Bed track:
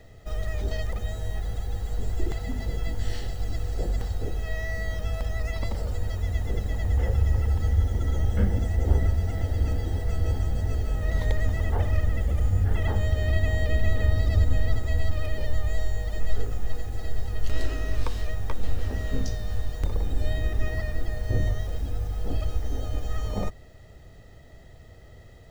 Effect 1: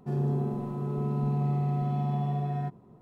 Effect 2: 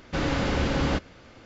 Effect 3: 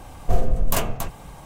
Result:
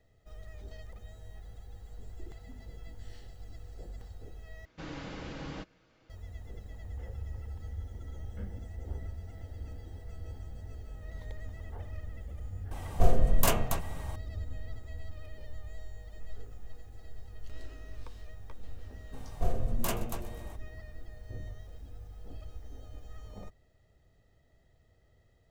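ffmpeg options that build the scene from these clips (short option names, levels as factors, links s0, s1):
-filter_complex "[3:a]asplit=2[s0][s1];[0:a]volume=0.133[s2];[2:a]aecho=1:1:6.3:0.39[s3];[s1]asplit=7[s4][s5][s6][s7][s8][s9][s10];[s5]adelay=126,afreqshift=-120,volume=0.126[s11];[s6]adelay=252,afreqshift=-240,volume=0.0822[s12];[s7]adelay=378,afreqshift=-360,volume=0.0531[s13];[s8]adelay=504,afreqshift=-480,volume=0.0347[s14];[s9]adelay=630,afreqshift=-600,volume=0.0224[s15];[s10]adelay=756,afreqshift=-720,volume=0.0146[s16];[s4][s11][s12][s13][s14][s15][s16]amix=inputs=7:normalize=0[s17];[s2]asplit=2[s18][s19];[s18]atrim=end=4.654[s20];[s3]atrim=end=1.45,asetpts=PTS-STARTPTS,volume=0.15[s21];[s19]atrim=start=6.096[s22];[s0]atrim=end=1.45,asetpts=PTS-STARTPTS,volume=0.708,afade=t=in:d=0.004:c=hsin,afade=t=out:st=1.446:d=0.004:c=hsin,adelay=12710[s23];[s17]atrim=end=1.45,asetpts=PTS-STARTPTS,volume=0.316,afade=t=in:d=0.02,afade=t=out:st=1.43:d=0.02,adelay=19120[s24];[s20][s21]acrossfade=d=0.004:c1=hsin:c2=hsin[s25];[s25][s22]acrossfade=d=0.004:c1=hsin:c2=hsin[s26];[s26][s23][s24]amix=inputs=3:normalize=0"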